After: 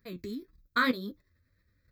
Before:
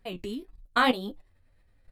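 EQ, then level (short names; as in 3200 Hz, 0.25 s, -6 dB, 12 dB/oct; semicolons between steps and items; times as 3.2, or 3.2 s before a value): HPF 61 Hz 12 dB/oct; high shelf 10000 Hz +10 dB; fixed phaser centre 2900 Hz, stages 6; -1.0 dB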